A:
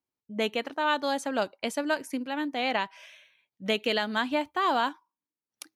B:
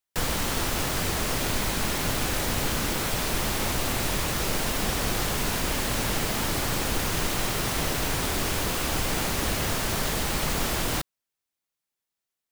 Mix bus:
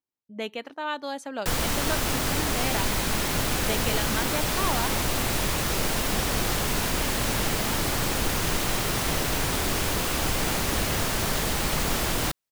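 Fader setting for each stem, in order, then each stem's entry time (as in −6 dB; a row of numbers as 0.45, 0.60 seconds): −4.5, +1.0 decibels; 0.00, 1.30 seconds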